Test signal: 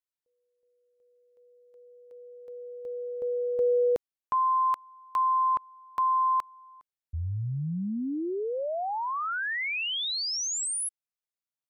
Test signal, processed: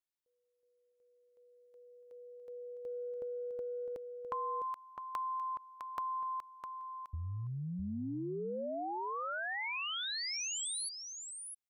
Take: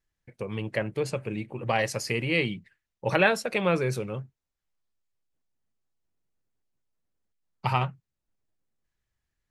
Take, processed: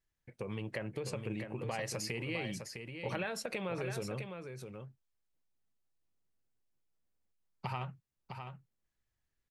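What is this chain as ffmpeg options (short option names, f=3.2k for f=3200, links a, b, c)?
-af "acompressor=threshold=-36dB:ratio=5:attack=40:release=45:knee=1:detection=rms,aecho=1:1:657:0.447,volume=-4dB"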